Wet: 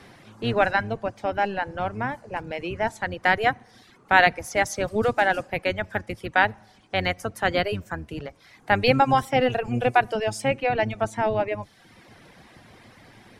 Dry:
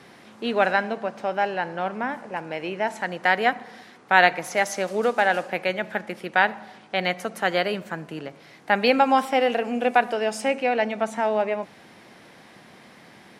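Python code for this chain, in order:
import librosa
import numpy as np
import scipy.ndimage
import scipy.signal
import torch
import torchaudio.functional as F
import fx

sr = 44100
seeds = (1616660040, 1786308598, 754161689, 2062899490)

y = fx.octave_divider(x, sr, octaves=1, level_db=0.0)
y = fx.dereverb_blind(y, sr, rt60_s=0.8)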